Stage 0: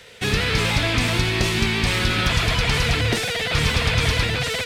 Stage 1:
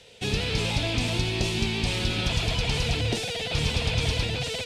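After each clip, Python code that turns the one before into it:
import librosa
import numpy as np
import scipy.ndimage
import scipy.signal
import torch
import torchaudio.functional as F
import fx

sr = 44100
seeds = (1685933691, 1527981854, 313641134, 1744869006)

y = scipy.signal.sosfilt(scipy.signal.butter(2, 10000.0, 'lowpass', fs=sr, output='sos'), x)
y = fx.band_shelf(y, sr, hz=1500.0, db=-9.0, octaves=1.2)
y = y * librosa.db_to_amplitude(-5.0)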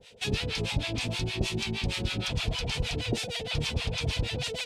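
y = fx.rider(x, sr, range_db=10, speed_s=0.5)
y = fx.harmonic_tremolo(y, sr, hz=6.4, depth_pct=100, crossover_hz=740.0)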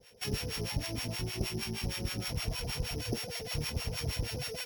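y = np.r_[np.sort(x[:len(x) // 8 * 8].reshape(-1, 8), axis=1).ravel(), x[len(x) // 8 * 8:]]
y = y * librosa.db_to_amplitude(-5.0)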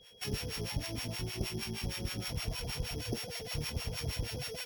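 y = x + 10.0 ** (-56.0 / 20.0) * np.sin(2.0 * np.pi * 3300.0 * np.arange(len(x)) / sr)
y = y * librosa.db_to_amplitude(-2.0)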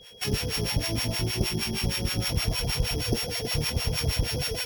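y = x + 10.0 ** (-9.5 / 20.0) * np.pad(x, (int(320 * sr / 1000.0), 0))[:len(x)]
y = y * librosa.db_to_amplitude(9.0)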